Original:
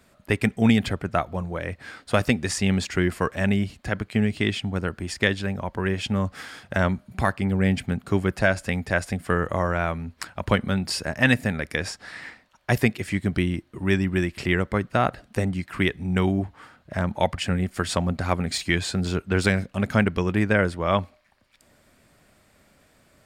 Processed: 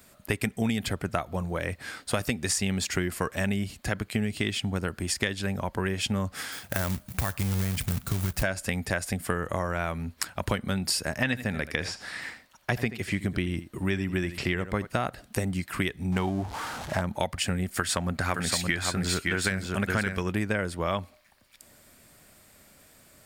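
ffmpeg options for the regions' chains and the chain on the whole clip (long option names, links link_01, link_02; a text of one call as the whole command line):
ffmpeg -i in.wav -filter_complex "[0:a]asettb=1/sr,asplit=3[link_01][link_02][link_03];[link_01]atrim=end=6.524[link_04];[link_02]atrim=start=6.52:end=8.43,asetpts=PTS-STARTPTS,afade=type=in:duration=0.004:curve=qsin,afade=type=out:start_time=1.906:duration=0.004:curve=qsin,asubboost=boost=10.5:cutoff=130,acompressor=threshold=-22dB:ratio=4:attack=3.2:release=140:knee=1:detection=peak,acrusher=bits=3:mode=log:mix=0:aa=0.000001[link_05];[link_03]atrim=start=8.426[link_06];[link_04][link_05]acrossfade=duration=0.004:curve1=hsin:curve2=qsin[link_07];[link_07][link_06]acrossfade=duration=0.004:curve1=qsin:curve2=hsin,asettb=1/sr,asplit=3[link_08][link_09][link_10];[link_08]atrim=end=11.164[link_11];[link_09]atrim=start=11.16:end=14.87,asetpts=PTS-STARTPTS,afade=type=in:duration=0.004:curve=qsin,afade=type=out:start_time=3.706:duration=0.004:curve=qsin,acrossover=split=5100[link_12][link_13];[link_13]acompressor=threshold=-55dB:ratio=4:attack=1:release=60[link_14];[link_12][link_14]amix=inputs=2:normalize=0,aecho=1:1:81:0.168,atrim=end_sample=163611[link_15];[link_10]atrim=start=14.866[link_16];[link_11][link_15]acrossfade=duration=0.004:curve1=hsin:curve2=qsin[link_17];[link_17][link_16]acrossfade=duration=0.004:curve1=qsin:curve2=hsin,asettb=1/sr,asplit=3[link_18][link_19][link_20];[link_18]atrim=end=16.124[link_21];[link_19]atrim=start=16.12:end=17.01,asetpts=PTS-STARTPTS,afade=type=in:duration=0.004:curve=qsin,afade=type=out:start_time=0.886:duration=0.004:curve=qsin,aeval=exprs='val(0)+0.5*0.0188*sgn(val(0))':channel_layout=same,equalizer=frequency=850:width_type=o:width=0.68:gain=8.5,adynamicsmooth=sensitivity=3:basefreq=7200[link_22];[link_20]atrim=start=17.006[link_23];[link_21][link_22]acrossfade=duration=0.004:curve1=hsin:curve2=qsin[link_24];[link_24][link_23]acrossfade=duration=0.004:curve1=qsin:curve2=hsin,asettb=1/sr,asplit=3[link_25][link_26][link_27];[link_25]atrim=end=17.774[link_28];[link_26]atrim=start=17.77:end=20.28,asetpts=PTS-STARTPTS,afade=type=in:duration=0.004:curve=qsin,afade=type=out:start_time=2.506:duration=0.004:curve=qsin,equalizer=frequency=1600:width=1.5:gain=7,aecho=1:1:569:0.596,atrim=end_sample=110691[link_29];[link_27]atrim=start=20.276[link_30];[link_28][link_29]acrossfade=duration=0.004:curve1=hsin:curve2=qsin[link_31];[link_31][link_30]acrossfade=duration=0.004:curve1=qsin:curve2=hsin,aemphasis=mode=production:type=50kf,acompressor=threshold=-24dB:ratio=6" out.wav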